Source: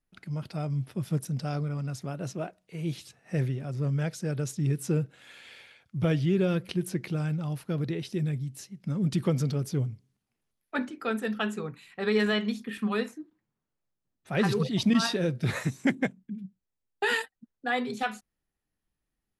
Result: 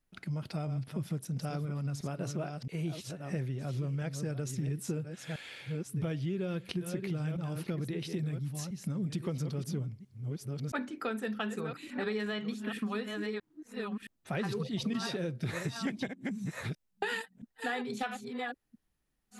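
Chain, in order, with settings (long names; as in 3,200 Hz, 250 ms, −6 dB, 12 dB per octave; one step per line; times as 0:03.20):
delay that plays each chunk backwards 670 ms, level −9.5 dB
downward compressor 5 to 1, threshold −35 dBFS, peak gain reduction 14.5 dB
level +2.5 dB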